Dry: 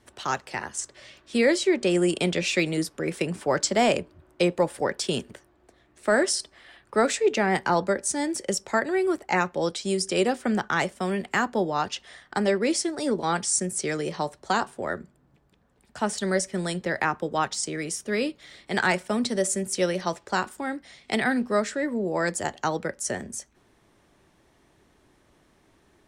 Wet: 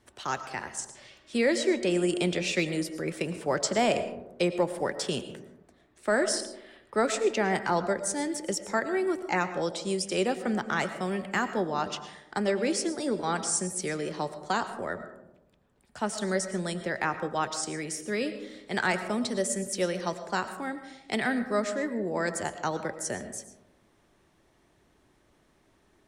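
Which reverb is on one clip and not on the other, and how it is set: digital reverb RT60 0.94 s, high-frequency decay 0.3×, pre-delay 70 ms, DRR 10.5 dB; gain -4 dB

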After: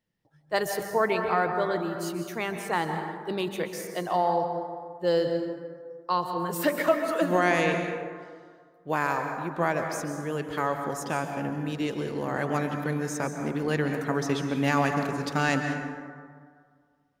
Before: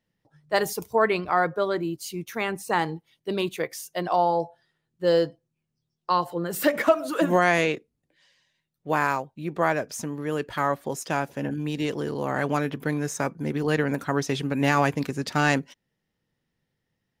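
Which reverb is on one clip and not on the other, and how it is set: plate-style reverb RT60 1.9 s, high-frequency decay 0.4×, pre-delay 0.12 s, DRR 5 dB; gain -3.5 dB

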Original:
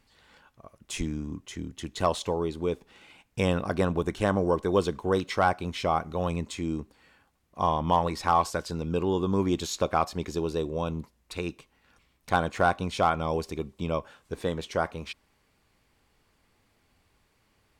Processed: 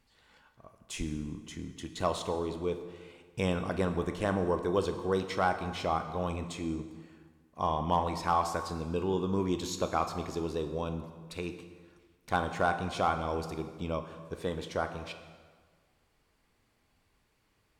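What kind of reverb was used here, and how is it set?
plate-style reverb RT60 1.6 s, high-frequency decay 0.75×, DRR 7 dB; gain -5 dB

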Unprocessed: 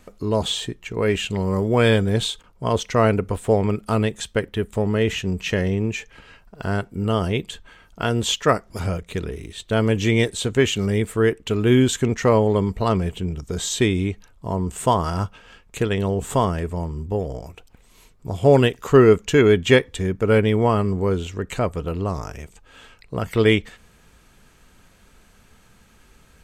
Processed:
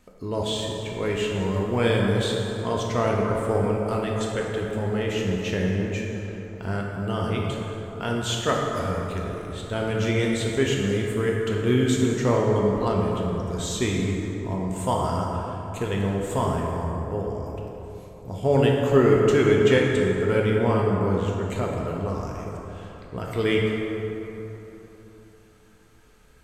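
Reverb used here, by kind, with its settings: plate-style reverb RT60 3.6 s, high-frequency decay 0.45×, DRR -2 dB; gain -7.5 dB

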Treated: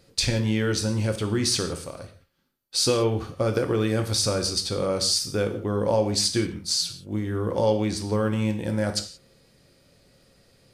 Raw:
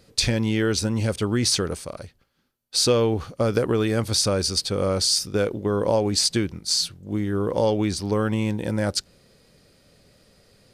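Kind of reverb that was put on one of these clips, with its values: non-linear reverb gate 0.2 s falling, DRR 5.5 dB; gain -3 dB

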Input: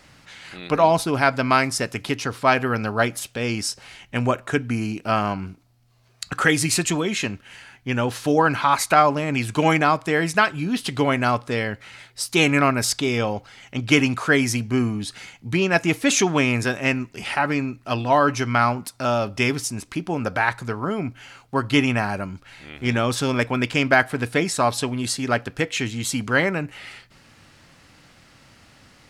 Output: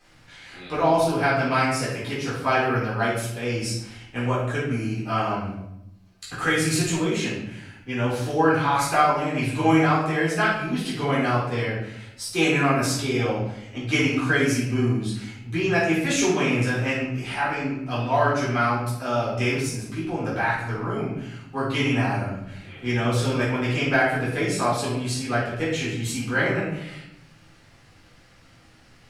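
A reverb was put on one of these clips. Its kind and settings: shoebox room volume 230 m³, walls mixed, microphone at 3.8 m; gain -14 dB

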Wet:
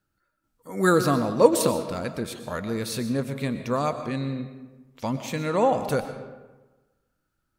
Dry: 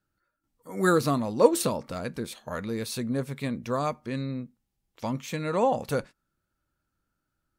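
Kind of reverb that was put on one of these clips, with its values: digital reverb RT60 1.2 s, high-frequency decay 0.6×, pre-delay 80 ms, DRR 9 dB; gain +2.5 dB

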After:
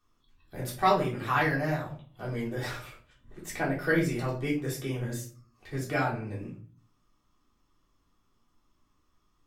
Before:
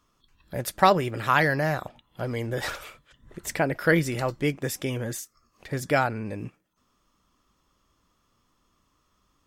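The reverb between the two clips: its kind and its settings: shoebox room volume 290 m³, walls furnished, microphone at 3.5 m; gain -11.5 dB

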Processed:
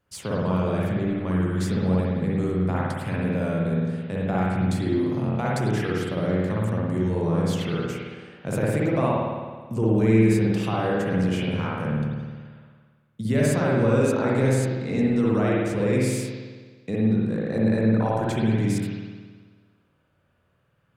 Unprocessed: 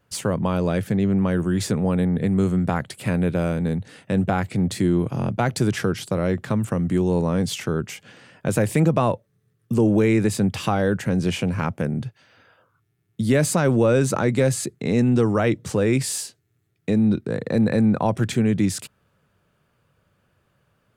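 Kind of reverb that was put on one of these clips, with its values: spring tank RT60 1.5 s, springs 54 ms, chirp 55 ms, DRR -5.5 dB; gain -8.5 dB

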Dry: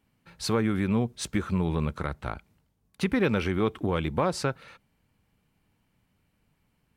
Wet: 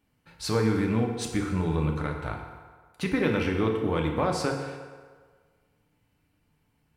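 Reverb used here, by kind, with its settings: FDN reverb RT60 1.6 s, low-frequency decay 0.7×, high-frequency decay 0.65×, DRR 1 dB; gain -2 dB

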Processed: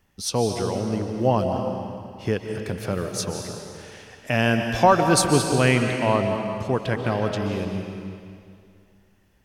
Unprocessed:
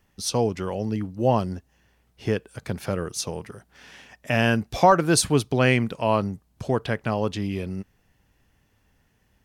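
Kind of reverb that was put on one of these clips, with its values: digital reverb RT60 2.3 s, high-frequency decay 0.95×, pre-delay 0.105 s, DRR 4 dB

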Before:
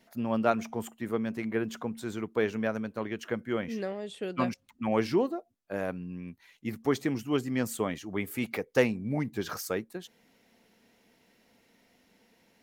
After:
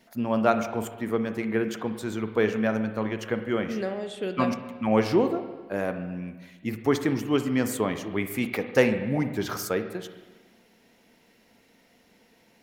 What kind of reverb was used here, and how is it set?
spring tank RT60 1.3 s, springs 37/46/50 ms, chirp 30 ms, DRR 8 dB; gain +4 dB

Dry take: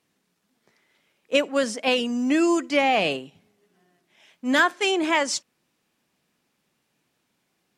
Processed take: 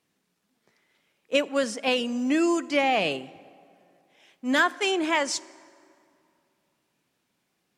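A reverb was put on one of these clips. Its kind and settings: plate-style reverb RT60 2.6 s, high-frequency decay 0.6×, DRR 20 dB; gain -2.5 dB

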